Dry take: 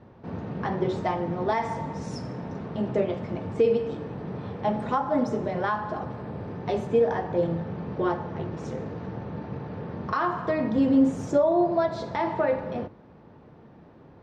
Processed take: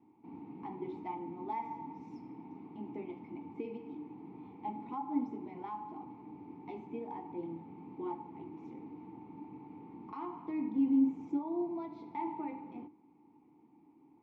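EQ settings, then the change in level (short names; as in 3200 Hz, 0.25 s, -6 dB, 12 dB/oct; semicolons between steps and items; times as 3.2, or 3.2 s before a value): vowel filter u; -2.0 dB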